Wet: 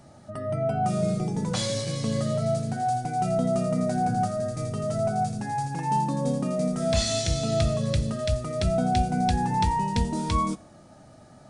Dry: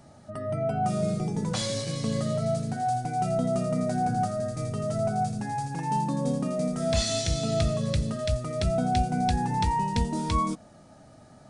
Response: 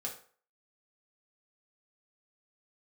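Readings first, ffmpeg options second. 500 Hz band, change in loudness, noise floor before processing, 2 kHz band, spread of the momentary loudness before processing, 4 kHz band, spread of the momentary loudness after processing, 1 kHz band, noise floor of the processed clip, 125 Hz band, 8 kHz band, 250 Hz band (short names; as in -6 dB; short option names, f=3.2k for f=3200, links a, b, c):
+1.5 dB, +1.5 dB, -52 dBFS, +1.5 dB, 5 LU, +1.0 dB, 5 LU, +1.5 dB, -50 dBFS, +1.5 dB, +1.5 dB, +1.5 dB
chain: -filter_complex "[0:a]asplit=2[a][b];[1:a]atrim=start_sample=2205,asetrate=31752,aresample=44100[c];[b][c]afir=irnorm=-1:irlink=0,volume=-14dB[d];[a][d]amix=inputs=2:normalize=0"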